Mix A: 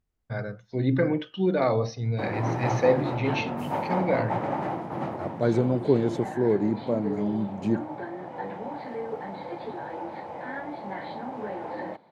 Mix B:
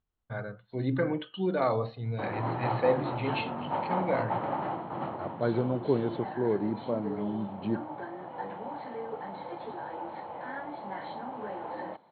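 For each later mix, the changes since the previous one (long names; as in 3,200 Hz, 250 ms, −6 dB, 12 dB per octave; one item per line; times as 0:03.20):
master: add Chebyshev low-pass with heavy ripple 4,300 Hz, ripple 6 dB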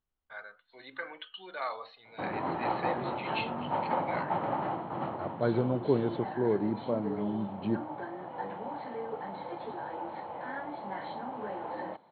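first voice: add high-pass filter 1,200 Hz 12 dB per octave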